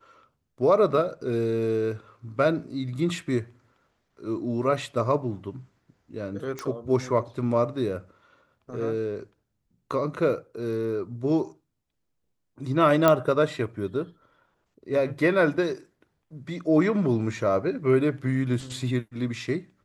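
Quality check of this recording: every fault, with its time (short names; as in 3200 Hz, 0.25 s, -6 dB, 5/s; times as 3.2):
6.59 pop -19 dBFS
13.08 pop -6 dBFS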